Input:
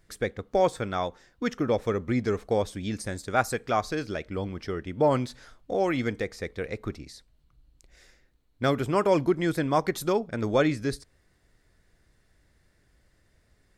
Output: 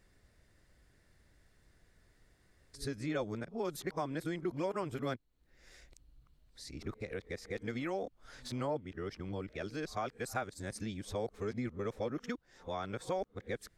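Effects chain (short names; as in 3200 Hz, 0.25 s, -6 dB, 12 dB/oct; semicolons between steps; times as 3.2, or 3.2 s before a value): whole clip reversed; compressor 2:1, threshold -40 dBFS, peak gain reduction 12.5 dB; gain -2 dB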